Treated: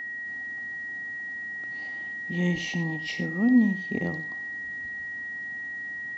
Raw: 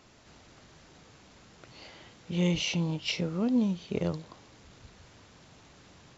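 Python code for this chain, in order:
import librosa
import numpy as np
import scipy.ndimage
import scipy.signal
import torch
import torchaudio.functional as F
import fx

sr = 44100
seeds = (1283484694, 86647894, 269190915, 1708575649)

p1 = fx.small_body(x, sr, hz=(250.0, 770.0, 2000.0), ring_ms=30, db=13)
p2 = p1 + fx.echo_single(p1, sr, ms=90, db=-13.0, dry=0)
p3 = p2 + 10.0 ** (-27.0 / 20.0) * np.sin(2.0 * np.pi * 1900.0 * np.arange(len(p2)) / sr)
y = F.gain(torch.from_numpy(p3), -5.5).numpy()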